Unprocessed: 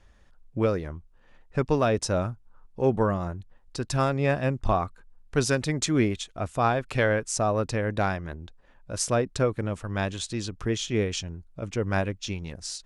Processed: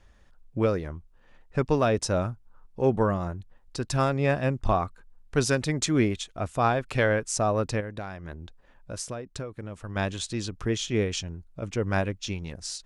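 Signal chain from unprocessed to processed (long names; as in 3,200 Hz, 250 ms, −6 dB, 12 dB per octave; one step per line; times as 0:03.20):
0:07.80–0:09.96: downward compressor 12 to 1, threshold −32 dBFS, peak gain reduction 14 dB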